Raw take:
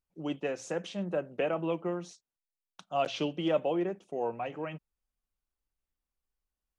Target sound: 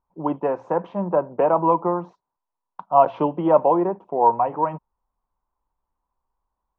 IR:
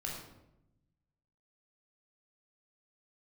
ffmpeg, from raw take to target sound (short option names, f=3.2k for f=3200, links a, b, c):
-af "lowpass=f=970:t=q:w=8.4,volume=8dB"